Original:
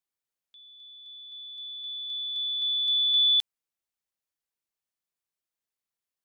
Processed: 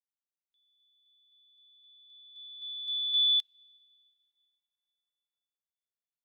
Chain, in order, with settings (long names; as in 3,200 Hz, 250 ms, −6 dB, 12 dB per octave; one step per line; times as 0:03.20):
dense smooth reverb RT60 3.5 s, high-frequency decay 0.9×, DRR 11.5 dB
expander for the loud parts 2.5 to 1, over −33 dBFS
level −4 dB